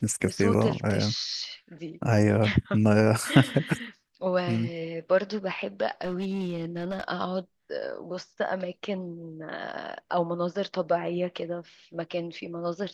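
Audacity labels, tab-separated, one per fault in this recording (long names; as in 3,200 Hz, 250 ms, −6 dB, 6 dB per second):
6.040000	7.040000	clipping −26 dBFS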